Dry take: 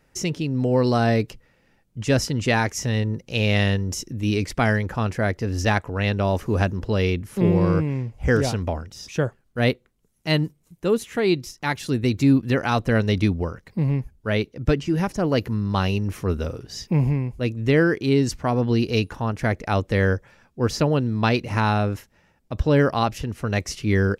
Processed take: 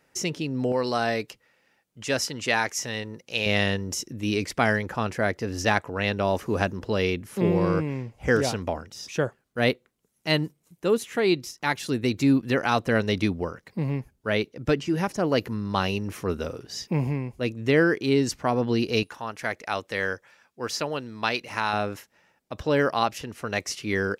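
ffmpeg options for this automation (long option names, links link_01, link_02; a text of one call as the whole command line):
ffmpeg -i in.wav -af "asetnsamples=nb_out_samples=441:pad=0,asendcmd='0.72 highpass f 740;3.46 highpass f 260;19.03 highpass f 1100;21.73 highpass f 480',highpass=frequency=290:poles=1" out.wav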